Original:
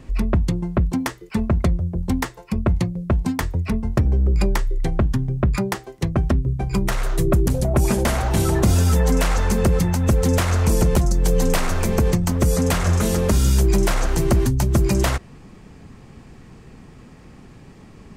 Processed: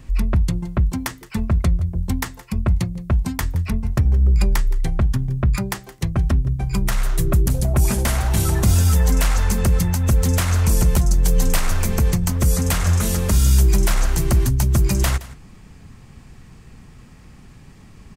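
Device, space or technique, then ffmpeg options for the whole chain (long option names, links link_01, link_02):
smiley-face EQ: -af "lowshelf=frequency=130:gain=3.5,equalizer=frequency=410:width_type=o:width=2.1:gain=-7,highshelf=frequency=9200:gain=7.5,aecho=1:1:169:0.126"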